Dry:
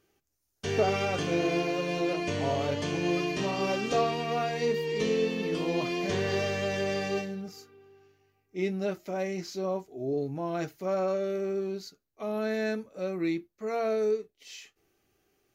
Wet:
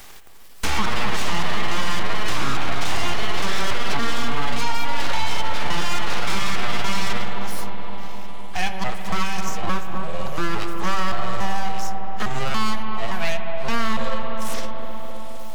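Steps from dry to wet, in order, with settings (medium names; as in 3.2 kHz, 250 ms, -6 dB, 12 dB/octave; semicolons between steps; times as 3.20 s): pitch shift switched off and on -8.5 st, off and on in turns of 285 ms; Bessel high-pass 500 Hz, order 4; full-wave rectifier; on a send: bucket-brigade echo 256 ms, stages 2048, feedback 55%, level -8 dB; on the sum: spring tank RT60 2.3 s, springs 59 ms, chirp 55 ms, DRR 8.5 dB; loudness maximiser +20.5 dB; three bands compressed up and down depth 70%; trim -7 dB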